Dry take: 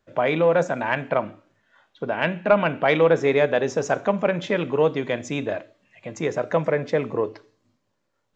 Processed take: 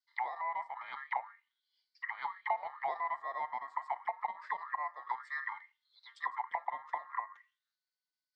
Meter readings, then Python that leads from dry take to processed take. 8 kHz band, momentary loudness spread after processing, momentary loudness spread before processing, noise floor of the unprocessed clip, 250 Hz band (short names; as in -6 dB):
n/a, 7 LU, 11 LU, -74 dBFS, under -40 dB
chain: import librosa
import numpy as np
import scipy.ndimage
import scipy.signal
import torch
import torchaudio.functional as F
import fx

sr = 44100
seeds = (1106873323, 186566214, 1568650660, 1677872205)

y = fx.fixed_phaser(x, sr, hz=460.0, stages=4)
y = y * np.sin(2.0 * np.pi * 1500.0 * np.arange(len(y)) / sr)
y = fx.auto_wah(y, sr, base_hz=690.0, top_hz=4600.0, q=6.1, full_db=-23.0, direction='down')